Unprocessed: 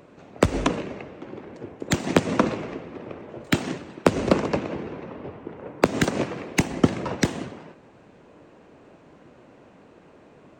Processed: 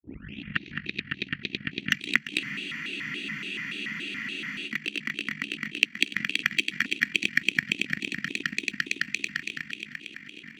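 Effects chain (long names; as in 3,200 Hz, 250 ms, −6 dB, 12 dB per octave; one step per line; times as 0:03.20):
turntable start at the beginning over 1.03 s
echo that builds up and dies away 112 ms, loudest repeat 5, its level −6 dB
amplitude modulation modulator 54 Hz, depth 60%
high-pass filter 60 Hz 24 dB per octave
flat-topped bell 2,900 Hz +9 dB 1 octave
downward compressor 6 to 1, threshold −35 dBFS, peak gain reduction 22 dB
Chebyshev band-stop filter 250–2,100 Hz, order 3
convolution reverb RT60 0.45 s, pre-delay 12 ms, DRR 12 dB
transient designer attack +10 dB, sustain −6 dB
low-shelf EQ 89 Hz −5.5 dB
frozen spectrum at 0:02.41, 2.27 s
pitch modulation by a square or saw wave square 3.5 Hz, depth 250 cents
level +2.5 dB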